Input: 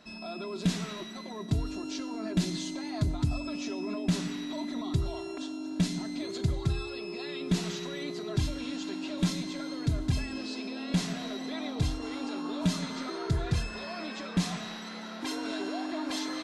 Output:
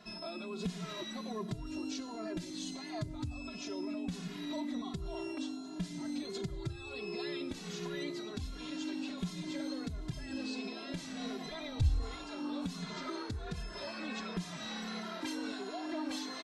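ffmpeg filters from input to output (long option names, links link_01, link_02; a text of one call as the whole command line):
ffmpeg -i in.wav -filter_complex "[0:a]acompressor=threshold=-36dB:ratio=10,asplit=3[link_01][link_02][link_03];[link_01]afade=type=out:start_time=11.45:duration=0.02[link_04];[link_02]asubboost=boost=9.5:cutoff=85,afade=type=in:start_time=11.45:duration=0.02,afade=type=out:start_time=12.39:duration=0.02[link_05];[link_03]afade=type=in:start_time=12.39:duration=0.02[link_06];[link_04][link_05][link_06]amix=inputs=3:normalize=0,asplit=2[link_07][link_08];[link_08]adelay=2.4,afreqshift=-1.4[link_09];[link_07][link_09]amix=inputs=2:normalize=1,volume=3dB" out.wav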